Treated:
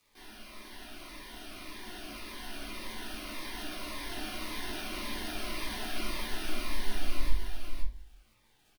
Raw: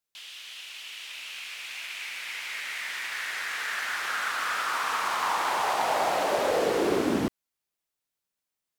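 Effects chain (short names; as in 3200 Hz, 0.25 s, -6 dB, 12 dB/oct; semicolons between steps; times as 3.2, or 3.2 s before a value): inverse Chebyshev band-stop 240–5900 Hz, stop band 70 dB; comb 2.8 ms, depth 85%; sample-and-hold 6×; crackle 180/s -70 dBFS; frequency shift -53 Hz; echo 0.522 s -6 dB; reverb RT60 0.40 s, pre-delay 3 ms, DRR -5.5 dB; cascading phaser falling 1.8 Hz; gain +12 dB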